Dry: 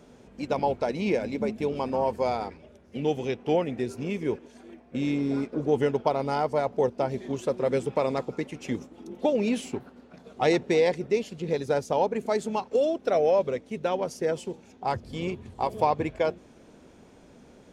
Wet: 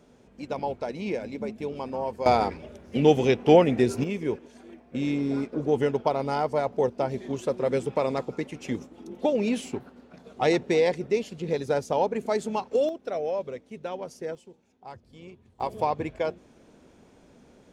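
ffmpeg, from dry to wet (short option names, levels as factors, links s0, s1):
-af "asetnsamples=n=441:p=0,asendcmd='2.26 volume volume 8dB;4.04 volume volume 0dB;12.89 volume volume -7dB;14.35 volume volume -15dB;15.6 volume volume -2.5dB',volume=0.596"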